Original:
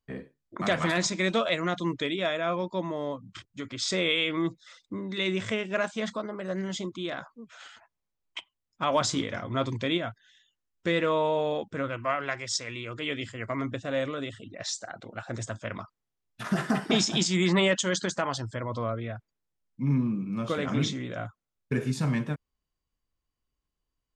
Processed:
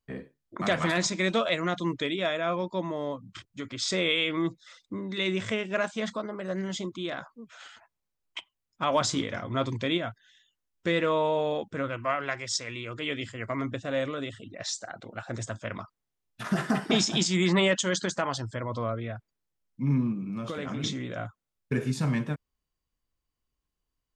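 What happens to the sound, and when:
20.12–20.84 compressor 5:1, threshold -30 dBFS

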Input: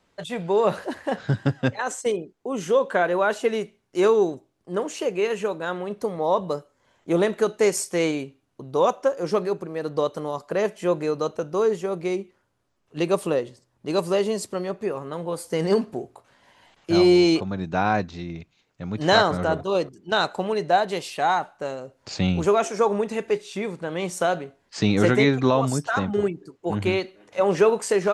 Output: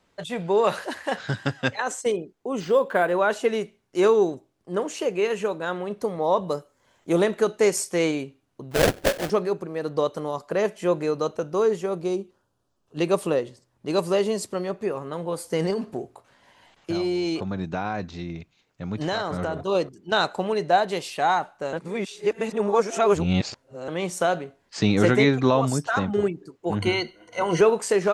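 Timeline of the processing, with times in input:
0.64–1.8 tilt shelf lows -6 dB, about 730 Hz
2.6–3.12 decimation joined by straight lines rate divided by 4×
6.46–7.22 high shelf 9500 Hz -> 5100 Hz +7.5 dB
8.71–9.3 sample-rate reducer 1100 Hz, jitter 20%
12–12.99 bell 2100 Hz -15 dB 0.45 oct
15.7–19.63 compressor 10:1, threshold -22 dBFS
21.73–23.88 reverse
26.82–27.61 ripple EQ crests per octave 1.9, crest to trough 16 dB

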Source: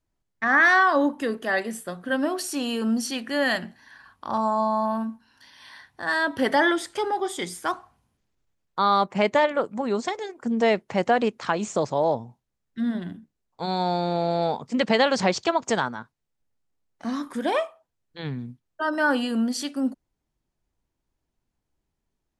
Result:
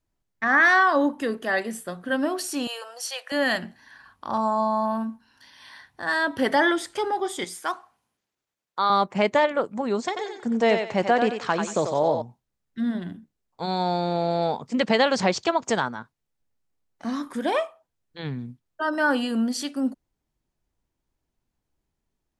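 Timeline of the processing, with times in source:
2.67–3.32 Chebyshev high-pass 510 Hz, order 5
7.44–8.9 HPF 540 Hz 6 dB/oct
10.07–12.22 thinning echo 91 ms, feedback 31%, level -5 dB

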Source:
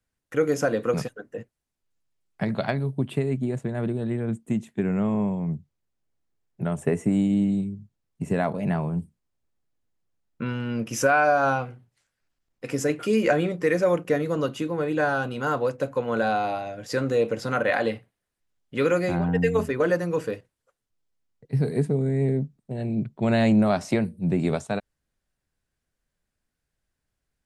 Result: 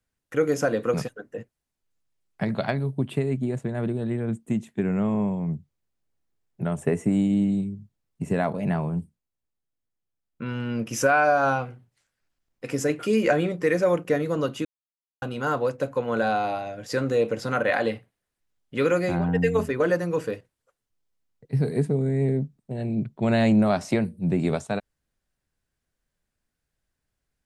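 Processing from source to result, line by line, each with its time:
8.95–10.59 dip -8 dB, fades 0.30 s
14.65–15.22 mute

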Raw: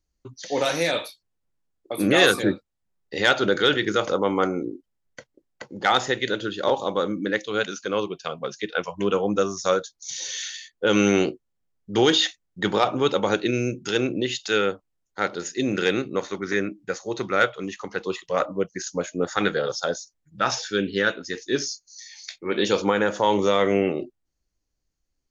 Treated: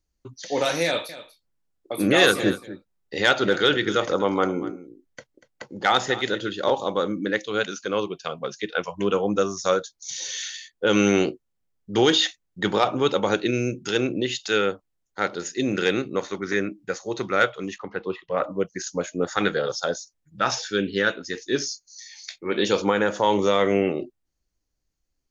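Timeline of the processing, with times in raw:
0.85–6.53 echo 0.24 s -15.5 dB
17.78–18.44 air absorption 350 m

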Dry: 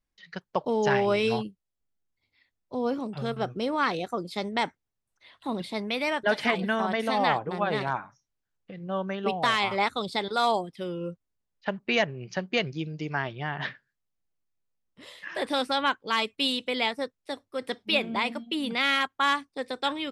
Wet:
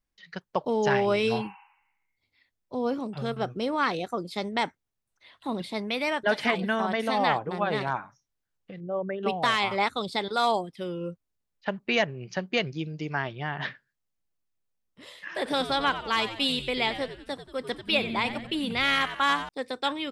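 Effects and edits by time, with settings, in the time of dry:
1.37–2.14 spectral repair 760–3000 Hz
8.8–9.23 formant sharpening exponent 2
15.34–19.49 frequency-shifting echo 91 ms, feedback 50%, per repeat -110 Hz, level -11.5 dB

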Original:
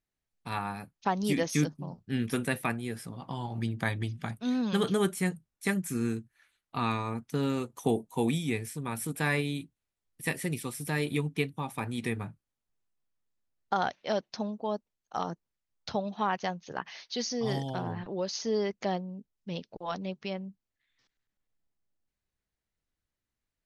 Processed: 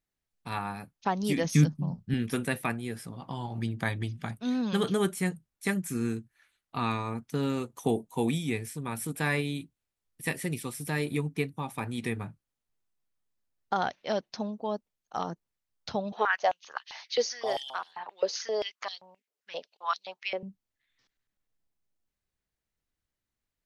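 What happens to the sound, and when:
1.44–2.14 resonant low shelf 260 Hz +7 dB, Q 1.5
11.02–11.59 bell 3200 Hz -6.5 dB 0.51 oct
16.12–20.43 stepped high-pass 7.6 Hz 460–4000 Hz

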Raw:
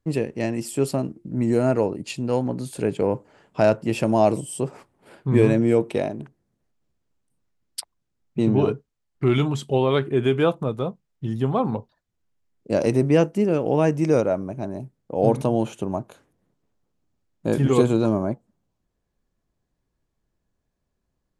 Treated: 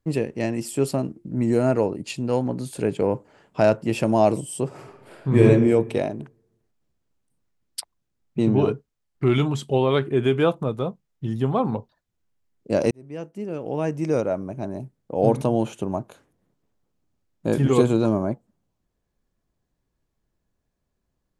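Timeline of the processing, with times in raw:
4.66–5.44 reverb throw, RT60 1.1 s, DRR -0.5 dB
12.91–14.73 fade in

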